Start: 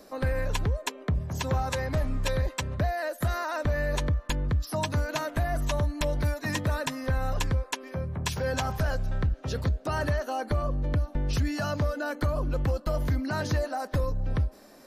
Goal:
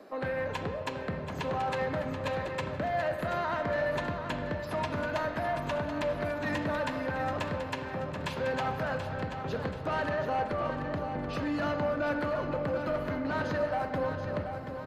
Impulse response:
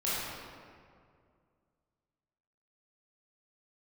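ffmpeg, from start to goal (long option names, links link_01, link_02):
-filter_complex "[0:a]highpass=93,bass=frequency=250:gain=-4,treble=frequency=4000:gain=-15,bandreject=frequency=5600:width=9.1,acrossover=split=120[link_01][link_02];[link_01]acompressor=threshold=-49dB:ratio=6[link_03];[link_03][link_02]amix=inputs=2:normalize=0,asoftclip=type=tanh:threshold=-28dB,aecho=1:1:732|1464|2196|2928|3660:0.376|0.177|0.083|0.039|0.0183,asplit=2[link_04][link_05];[1:a]atrim=start_sample=2205,lowpass=6300[link_06];[link_05][link_06]afir=irnorm=-1:irlink=0,volume=-12dB[link_07];[link_04][link_07]amix=inputs=2:normalize=0"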